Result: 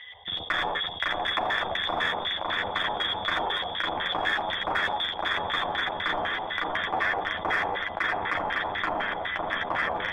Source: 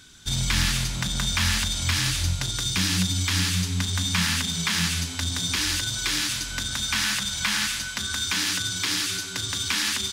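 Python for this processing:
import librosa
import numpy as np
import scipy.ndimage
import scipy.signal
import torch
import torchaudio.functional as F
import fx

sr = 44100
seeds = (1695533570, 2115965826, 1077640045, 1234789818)

p1 = fx.wiener(x, sr, points=41)
p2 = scipy.signal.sosfilt(scipy.signal.butter(2, 50.0, 'highpass', fs=sr, output='sos'), p1)
p3 = p2 + 10.0 ** (-4.0 / 20.0) * np.pad(p2, (int(84 * sr / 1000.0), 0))[:len(p2)]
p4 = fx.freq_invert(p3, sr, carrier_hz=3500)
p5 = fx.low_shelf(p4, sr, hz=270.0, db=-9.0)
p6 = fx.echo_feedback(p5, sr, ms=556, feedback_pct=55, wet_db=-4.0)
p7 = fx.filter_lfo_lowpass(p6, sr, shape='square', hz=4.0, low_hz=810.0, high_hz=1800.0, q=3.5)
p8 = np.clip(10.0 ** (23.5 / 20.0) * p7, -1.0, 1.0) / 10.0 ** (23.5 / 20.0)
p9 = p7 + (p8 * librosa.db_to_amplitude(-8.0))
p10 = fx.chorus_voices(p9, sr, voices=6, hz=0.6, base_ms=11, depth_ms=1.6, mix_pct=40)
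p11 = fx.env_flatten(p10, sr, amount_pct=50)
y = p11 * librosa.db_to_amplitude(-2.0)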